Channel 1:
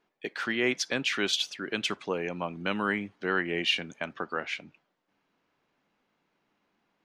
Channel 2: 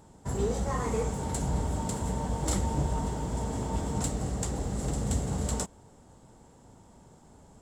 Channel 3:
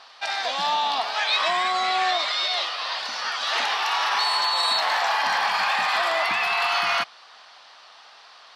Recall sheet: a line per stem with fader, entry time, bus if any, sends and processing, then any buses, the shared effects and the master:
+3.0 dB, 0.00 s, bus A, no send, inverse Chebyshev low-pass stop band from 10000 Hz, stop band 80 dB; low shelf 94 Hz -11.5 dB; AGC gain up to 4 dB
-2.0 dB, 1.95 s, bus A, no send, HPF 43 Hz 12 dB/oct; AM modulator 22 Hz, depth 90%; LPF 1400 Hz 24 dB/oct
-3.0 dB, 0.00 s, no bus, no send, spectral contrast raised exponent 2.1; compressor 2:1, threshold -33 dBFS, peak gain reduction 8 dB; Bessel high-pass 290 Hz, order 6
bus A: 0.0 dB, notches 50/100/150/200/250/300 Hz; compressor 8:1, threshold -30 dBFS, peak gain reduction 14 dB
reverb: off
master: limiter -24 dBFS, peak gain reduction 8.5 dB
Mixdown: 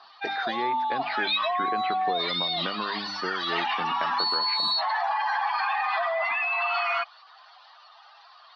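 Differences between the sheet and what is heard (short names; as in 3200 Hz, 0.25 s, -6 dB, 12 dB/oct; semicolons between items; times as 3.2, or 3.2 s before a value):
stem 2: muted; stem 3: missing compressor 2:1, threshold -33 dBFS, peak gain reduction 8 dB; master: missing limiter -24 dBFS, peak gain reduction 8.5 dB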